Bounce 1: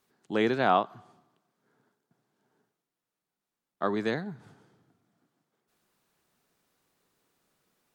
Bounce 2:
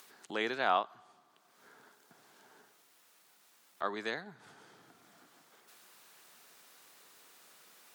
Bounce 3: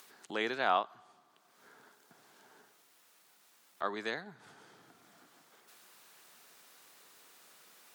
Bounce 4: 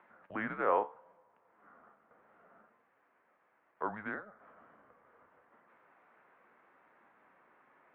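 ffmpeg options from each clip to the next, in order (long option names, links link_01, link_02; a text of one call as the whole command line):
ffmpeg -i in.wav -filter_complex "[0:a]highpass=frequency=1100:poles=1,asplit=2[link_01][link_02];[link_02]acompressor=mode=upward:threshold=-32dB:ratio=2.5,volume=-1.5dB[link_03];[link_01][link_03]amix=inputs=2:normalize=0,volume=-6.5dB" out.wav
ffmpeg -i in.wav -af anull out.wav
ffmpeg -i in.wav -af "highpass=frequency=460:width_type=q:width=0.5412,highpass=frequency=460:width_type=q:width=1.307,lowpass=frequency=2200:width_type=q:width=0.5176,lowpass=frequency=2200:width_type=q:width=0.7071,lowpass=frequency=2200:width_type=q:width=1.932,afreqshift=-210,flanger=delay=8.6:depth=5.8:regen=71:speed=0.71:shape=sinusoidal,volume=4.5dB" out.wav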